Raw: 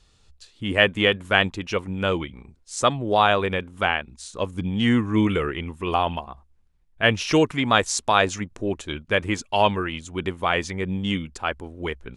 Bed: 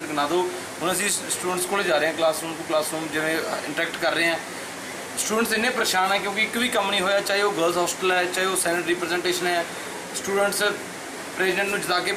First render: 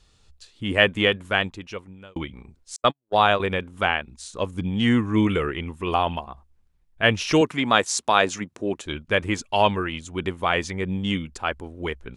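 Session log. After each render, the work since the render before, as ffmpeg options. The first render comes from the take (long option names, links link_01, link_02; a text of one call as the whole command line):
ffmpeg -i in.wav -filter_complex "[0:a]asettb=1/sr,asplit=3[link_01][link_02][link_03];[link_01]atrim=end=2.764[link_04];[link_02]atrim=start=2.76:end=3.4,asetpts=PTS-STARTPTS,afade=type=in:duration=0.004:curve=qsin,afade=type=out:start_time=0.636:duration=0.004:curve=qsin,agate=range=-57dB:threshold=-21dB:ratio=16:release=100:detection=peak[link_05];[link_03]atrim=start=3.396[link_06];[link_04][link_05]acrossfade=duration=0.004:curve1=hsin:curve2=qsin[link_07];[link_07][link_06]acrossfade=duration=0.004:curve1=qsin:curve2=hsin,asettb=1/sr,asplit=3[link_08][link_09][link_10];[link_08]atrim=end=7.414[link_11];[link_09]atrim=start=7.41:end=8.86,asetpts=PTS-STARTPTS,afade=type=in:duration=0.004:curve=qsin,afade=type=out:start_time=1.446:duration=0.004:curve=qsin,highpass=150[link_12];[link_10]atrim=start=8.856[link_13];[link_11][link_12]acrossfade=duration=0.004:curve1=hsin:curve2=qsin[link_14];[link_14][link_13]acrossfade=duration=0.004:curve1=qsin:curve2=hsin,asplit=2[link_15][link_16];[link_15]atrim=end=2.16,asetpts=PTS-STARTPTS,afade=type=out:start_time=0.98:duration=1.18[link_17];[link_16]atrim=start=2.16,asetpts=PTS-STARTPTS,afade=type=in:duration=0.004:curve=hsin[link_18];[link_17][link_18]concat=n=2:v=0:a=1" out.wav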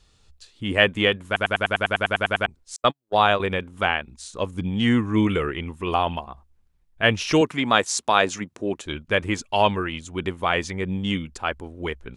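ffmpeg -i in.wav -filter_complex "[0:a]asplit=13[link_01][link_02][link_03][link_04][link_05][link_06][link_07][link_08][link_09][link_10][link_11][link_12][link_13];[link_01]atrim=end=1.362[link_14];[link_02]atrim=start=1.258:end=1.362[link_15];[link_03]atrim=start=1.258:end=1.362[link_16];[link_04]atrim=start=1.258:end=1.362[link_17];[link_05]atrim=start=1.258:end=1.362[link_18];[link_06]atrim=start=1.258:end=1.362[link_19];[link_07]atrim=start=1.258:end=1.362[link_20];[link_08]atrim=start=1.258:end=1.362[link_21];[link_09]atrim=start=1.258:end=1.362[link_22];[link_10]atrim=start=1.258:end=1.362[link_23];[link_11]atrim=start=1.258:end=1.362[link_24];[link_12]atrim=start=1.258:end=1.362[link_25];[link_13]atrim=start=2.458[link_26];[link_14][link_15]acrossfade=duration=0.004:curve1=hsin:curve2=hsin[link_27];[link_27][link_16]acrossfade=duration=0.004:curve1=hsin:curve2=hsin[link_28];[link_28][link_17]acrossfade=duration=0.004:curve1=hsin:curve2=hsin[link_29];[link_29][link_18]acrossfade=duration=0.004:curve1=hsin:curve2=hsin[link_30];[link_30][link_19]acrossfade=duration=0.004:curve1=hsin:curve2=hsin[link_31];[link_31][link_20]acrossfade=duration=0.004:curve1=hsin:curve2=hsin[link_32];[link_32][link_21]acrossfade=duration=0.004:curve1=hsin:curve2=hsin[link_33];[link_33][link_22]acrossfade=duration=0.004:curve1=hsin:curve2=hsin[link_34];[link_34][link_23]acrossfade=duration=0.004:curve1=hsin:curve2=hsin[link_35];[link_35][link_24]acrossfade=duration=0.004:curve1=hsin:curve2=hsin[link_36];[link_36][link_25]acrossfade=duration=0.004:curve1=hsin:curve2=hsin[link_37];[link_37][link_26]acrossfade=duration=0.004:curve1=hsin:curve2=hsin" out.wav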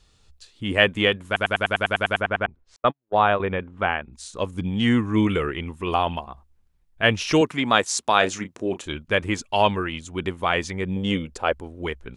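ffmpeg -i in.wav -filter_complex "[0:a]asplit=3[link_01][link_02][link_03];[link_01]afade=type=out:start_time=2.2:duration=0.02[link_04];[link_02]lowpass=2100,afade=type=in:start_time=2.2:duration=0.02,afade=type=out:start_time=4.12:duration=0.02[link_05];[link_03]afade=type=in:start_time=4.12:duration=0.02[link_06];[link_04][link_05][link_06]amix=inputs=3:normalize=0,asettb=1/sr,asplit=3[link_07][link_08][link_09];[link_07]atrim=end=8.184[link_10];[link_08]atrim=start=8.18:end=8.88,asetpts=PTS-STARTPTS,afade=type=in:duration=0.004:curve=qsin,afade=type=out:start_time=0.696:duration=0.004:curve=qsin,asplit=2[link_11][link_12];[link_12]adelay=32,volume=-10dB[link_13];[link_11][link_13]amix=inputs=2:normalize=0,atrim=end_sample=30870[link_14];[link_09]atrim=start=8.876[link_15];[link_10][link_14]acrossfade=duration=0.004:curve1=hsin:curve2=qsin[link_16];[link_16][link_15]acrossfade=duration=0.004:curve1=qsin:curve2=hsin,asettb=1/sr,asplit=3[link_17][link_18][link_19];[link_17]atrim=end=10.964[link_20];[link_18]atrim=start=10.96:end=11.53,asetpts=PTS-STARTPTS,afade=type=in:duration=0.004:curve=qsin,afade=type=out:start_time=0.566:duration=0.004:curve=qsin,equalizer=frequency=510:width_type=o:width=0.85:gain=10.5[link_21];[link_19]atrim=start=11.526[link_22];[link_20][link_21]acrossfade=duration=0.004:curve1=hsin:curve2=qsin[link_23];[link_23][link_22]acrossfade=duration=0.004:curve1=qsin:curve2=hsin" out.wav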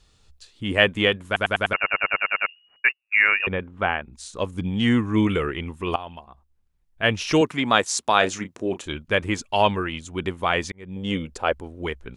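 ffmpeg -i in.wav -filter_complex "[0:a]asettb=1/sr,asplit=3[link_01][link_02][link_03];[link_01]atrim=end=1.734[link_04];[link_02]atrim=start=1.73:end=3.47,asetpts=PTS-STARTPTS,afade=type=in:duration=0.004:curve=qsin,afade=type=out:start_time=1.736:duration=0.004:curve=qsin,lowpass=frequency=2500:width_type=q:width=0.5098,lowpass=frequency=2500:width_type=q:width=0.6013,lowpass=frequency=2500:width_type=q:width=0.9,lowpass=frequency=2500:width_type=q:width=2.563,afreqshift=-2900[link_05];[link_03]atrim=start=3.466[link_06];[link_04][link_05]acrossfade=duration=0.004:curve1=hsin:curve2=qsin[link_07];[link_07][link_06]acrossfade=duration=0.004:curve1=qsin:curve2=hsin,asplit=3[link_08][link_09][link_10];[link_08]atrim=end=5.96,asetpts=PTS-STARTPTS,afade=type=out:start_time=5.956:duration=0.004:curve=hsin:silence=0.16788[link_11];[link_09]atrim=start=5.96:end=10.72,asetpts=PTS-STARTPTS,afade=type=in:duration=1.47:silence=0.16788,afade=type=out:start_time=4.756:duration=0.004:curve=hsin[link_12];[link_10]atrim=start=10.72,asetpts=PTS-STARTPTS,afade=type=in:duration=0.51[link_13];[link_11][link_12][link_13]concat=n=3:v=0:a=1" out.wav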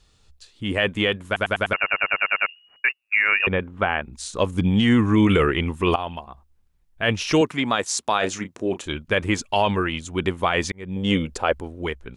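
ffmpeg -i in.wav -af "dynaudnorm=framelen=130:gausssize=11:maxgain=11.5dB,alimiter=limit=-8.5dB:level=0:latency=1:release=38" out.wav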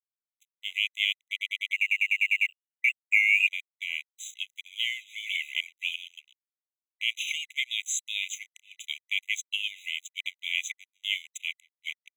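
ffmpeg -i in.wav -filter_complex "[0:a]acrossover=split=590[link_01][link_02];[link_02]aeval=exprs='sgn(val(0))*max(abs(val(0))-0.00891,0)':channel_layout=same[link_03];[link_01][link_03]amix=inputs=2:normalize=0,afftfilt=real='re*eq(mod(floor(b*sr/1024/2000),2),1)':imag='im*eq(mod(floor(b*sr/1024/2000),2),1)':win_size=1024:overlap=0.75" out.wav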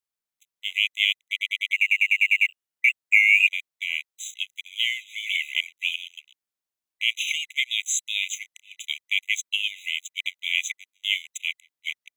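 ffmpeg -i in.wav -af "volume=5dB" out.wav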